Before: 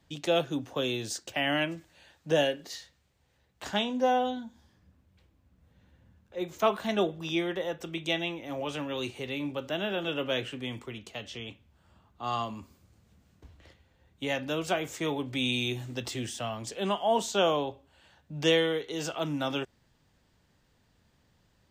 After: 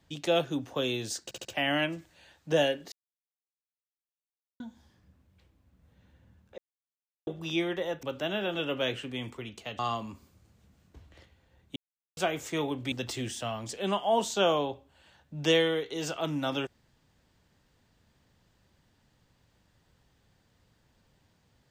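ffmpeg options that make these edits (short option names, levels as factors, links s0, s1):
-filter_complex "[0:a]asplit=13[s0][s1][s2][s3][s4][s5][s6][s7][s8][s9][s10][s11][s12];[s0]atrim=end=1.312[s13];[s1]atrim=start=1.238:end=1.312[s14];[s2]atrim=start=1.238:end=1.312[s15];[s3]atrim=start=1.238:end=2.71,asetpts=PTS-STARTPTS,afade=t=out:st=1.468:d=0.004:c=hsin[s16];[s4]atrim=start=2.71:end=4.39,asetpts=PTS-STARTPTS,volume=0[s17];[s5]atrim=start=4.39:end=6.37,asetpts=PTS-STARTPTS,afade=t=in:d=0.004:c=hsin,afade=t=out:st=1.976:d=0.004:c=hsin[s18];[s6]atrim=start=6.37:end=7.06,asetpts=PTS-STARTPTS,volume=0[s19];[s7]atrim=start=7.06:end=7.822,asetpts=PTS-STARTPTS,afade=t=in:d=0.004:c=hsin[s20];[s8]atrim=start=9.518:end=11.282[s21];[s9]atrim=start=12.268:end=14.24,asetpts=PTS-STARTPTS,afade=t=out:st=1.968:d=0.004:c=hsin[s22];[s10]atrim=start=14.24:end=14.65,asetpts=PTS-STARTPTS,volume=0[s23];[s11]atrim=start=14.65:end=15.402,asetpts=PTS-STARTPTS,afade=t=in:d=0.004:c=hsin[s24];[s12]atrim=start=15.898[s25];[s13][s14]acrossfade=d=0.004:c1=hsin:c2=hsin[s26];[s26][s15]acrossfade=d=0.004:c1=hsin:c2=hsin[s27];[s16][s17][s18][s19][s20]concat=n=5:v=0:a=1[s28];[s27][s28]acrossfade=d=0.004:c1=hsin:c2=hsin[s29];[s29][s21]acrossfade=d=0.004:c1=hsin:c2=hsin[s30];[s22][s23][s24]concat=n=3:v=0:a=1[s31];[s30][s31]acrossfade=d=0.004:c1=hsin:c2=hsin[s32];[s32][s25]acrossfade=d=0.004:c1=hsin:c2=hsin"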